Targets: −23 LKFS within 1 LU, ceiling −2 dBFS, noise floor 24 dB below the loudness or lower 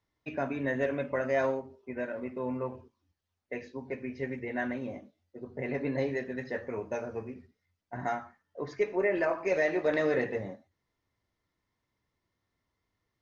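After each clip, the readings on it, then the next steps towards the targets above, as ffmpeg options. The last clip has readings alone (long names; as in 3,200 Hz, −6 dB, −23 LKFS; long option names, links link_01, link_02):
integrated loudness −33.0 LKFS; sample peak −16.0 dBFS; target loudness −23.0 LKFS
→ -af "volume=10dB"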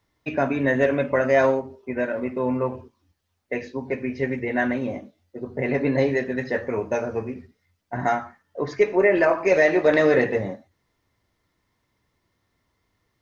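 integrated loudness −23.0 LKFS; sample peak −6.0 dBFS; background noise floor −73 dBFS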